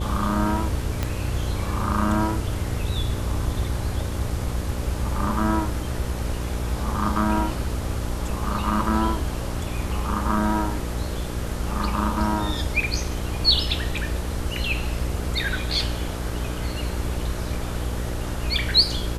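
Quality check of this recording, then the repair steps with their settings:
mains buzz 60 Hz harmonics 10 −29 dBFS
0:01.03: click −10 dBFS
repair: click removal
hum removal 60 Hz, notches 10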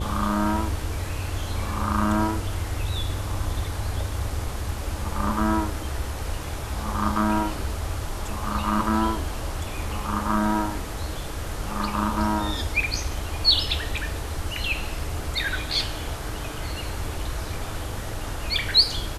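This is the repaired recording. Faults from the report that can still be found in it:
0:01.03: click

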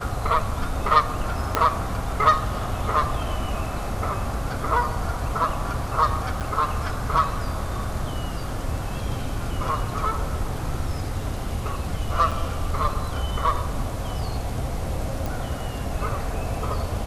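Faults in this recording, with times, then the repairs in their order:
0:01.55: click −5 dBFS
0:06.40–0:06.41: drop-out 8.1 ms
0:12.31–0:12.32: drop-out 6.1 ms
0:15.26: click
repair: click removal
repair the gap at 0:06.40, 8.1 ms
repair the gap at 0:12.31, 6.1 ms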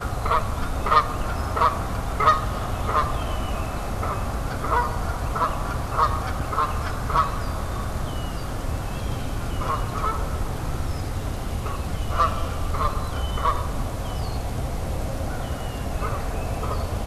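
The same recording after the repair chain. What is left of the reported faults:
0:01.55: click

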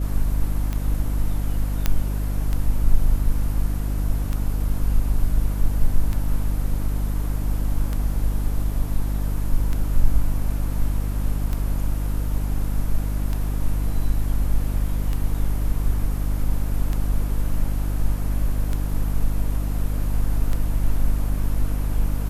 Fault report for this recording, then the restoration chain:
mains hum 50 Hz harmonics 6 −24 dBFS
scratch tick 33 1/3 rpm −14 dBFS
0:01.86: click −6 dBFS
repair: click removal
hum removal 50 Hz, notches 6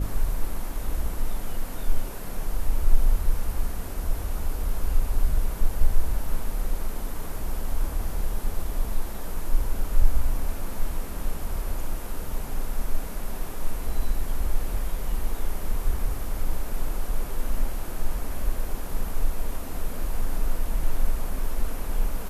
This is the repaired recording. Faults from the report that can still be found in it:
none of them is left

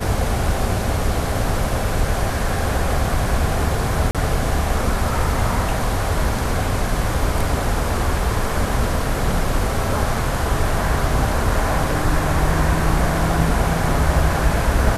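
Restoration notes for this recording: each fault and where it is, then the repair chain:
0:04.11–0:04.15: drop-out 37 ms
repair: repair the gap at 0:04.11, 37 ms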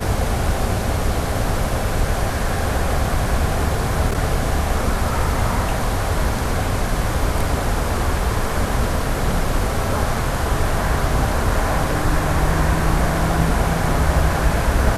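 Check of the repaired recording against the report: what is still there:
none of them is left

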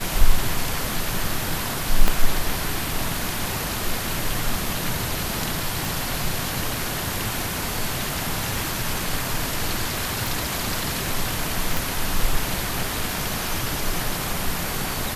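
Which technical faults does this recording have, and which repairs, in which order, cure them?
0:02.08: click −4 dBFS
0:05.85: click
0:10.27: click
0:11.77: click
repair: click removal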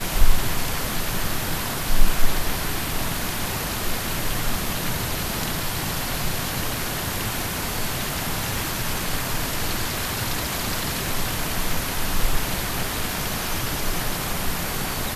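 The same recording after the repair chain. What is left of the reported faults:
0:02.08: click

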